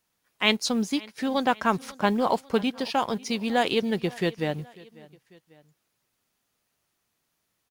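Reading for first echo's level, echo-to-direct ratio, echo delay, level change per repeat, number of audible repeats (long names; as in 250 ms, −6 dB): −22.5 dB, −21.5 dB, 545 ms, −5.5 dB, 2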